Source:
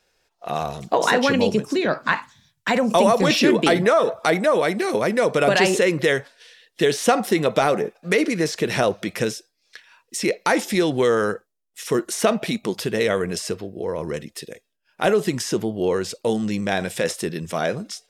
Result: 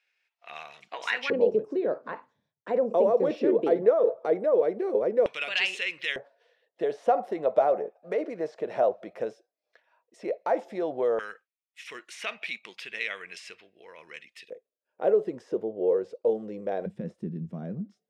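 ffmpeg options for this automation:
ffmpeg -i in.wav -af "asetnsamples=nb_out_samples=441:pad=0,asendcmd='1.3 bandpass f 470;5.26 bandpass f 2700;6.16 bandpass f 630;11.19 bandpass f 2400;14.5 bandpass f 500;16.86 bandpass f 190',bandpass=frequency=2300:width_type=q:width=3.3:csg=0" out.wav

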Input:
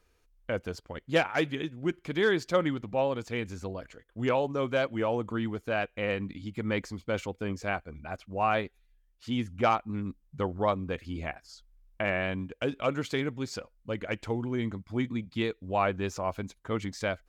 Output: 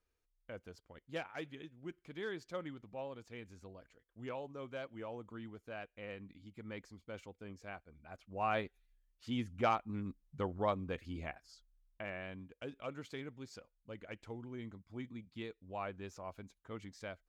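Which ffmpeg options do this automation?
ffmpeg -i in.wav -af "volume=-7dB,afade=type=in:start_time=8.03:duration=0.55:silence=0.334965,afade=type=out:start_time=11.06:duration=1.04:silence=0.398107" out.wav

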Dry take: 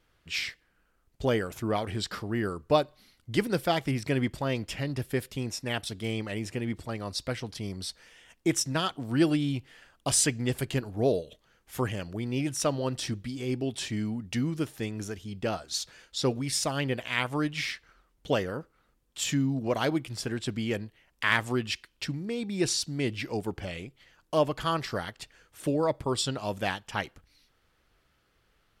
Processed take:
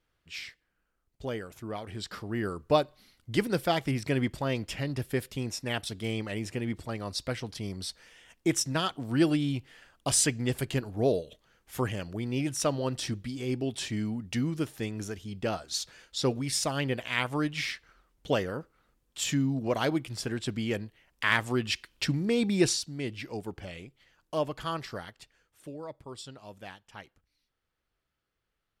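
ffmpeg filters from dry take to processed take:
ffmpeg -i in.wav -af "volume=7dB,afade=type=in:start_time=1.81:duration=0.8:silence=0.398107,afade=type=in:start_time=21.51:duration=0.95:silence=0.421697,afade=type=out:start_time=22.46:duration=0.36:silence=0.251189,afade=type=out:start_time=24.77:duration=0.91:silence=0.334965" out.wav

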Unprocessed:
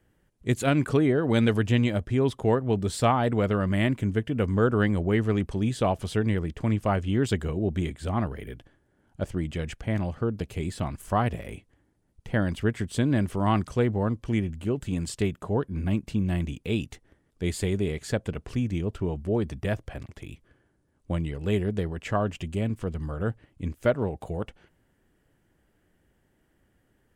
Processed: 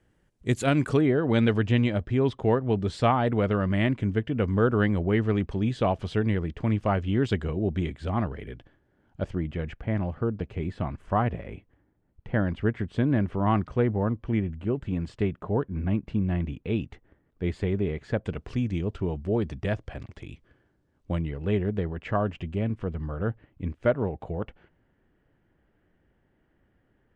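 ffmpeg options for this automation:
ffmpeg -i in.wav -af "asetnsamples=nb_out_samples=441:pad=0,asendcmd='1.01 lowpass f 4000;9.35 lowpass f 2200;18.25 lowpass f 5100;21.19 lowpass f 2600',lowpass=9100" out.wav

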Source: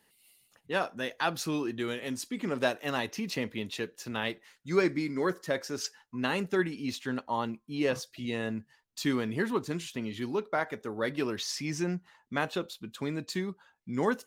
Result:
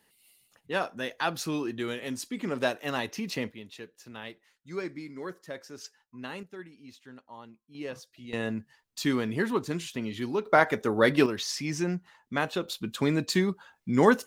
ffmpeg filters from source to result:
ffmpeg -i in.wav -af "asetnsamples=nb_out_samples=441:pad=0,asendcmd='3.51 volume volume -9dB;6.43 volume volume -15.5dB;7.75 volume volume -9dB;8.33 volume volume 2dB;10.46 volume volume 9.5dB;11.26 volume volume 2dB;12.68 volume volume 8dB',volume=0.5dB" out.wav

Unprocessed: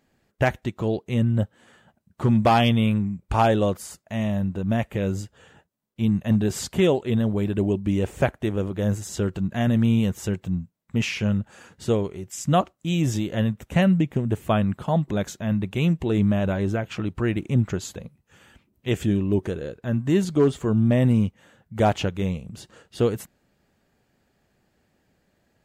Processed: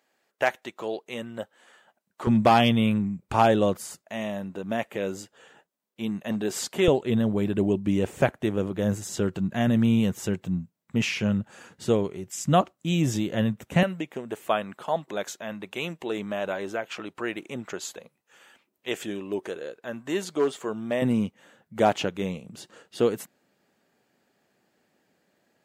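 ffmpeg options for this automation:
ffmpeg -i in.wav -af "asetnsamples=nb_out_samples=441:pad=0,asendcmd='2.27 highpass f 140;4.01 highpass f 320;6.88 highpass f 130;13.83 highpass f 470;21.02 highpass f 220',highpass=520" out.wav

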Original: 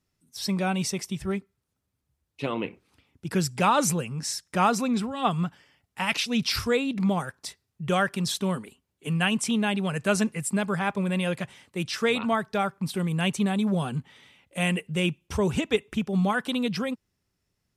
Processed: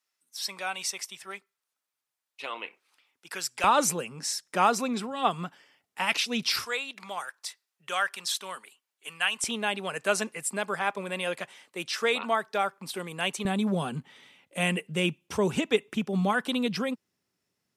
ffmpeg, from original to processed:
ffmpeg -i in.wav -af "asetnsamples=nb_out_samples=441:pad=0,asendcmd='3.64 highpass f 300;6.65 highpass f 980;9.44 highpass f 420;13.45 highpass f 190',highpass=920" out.wav

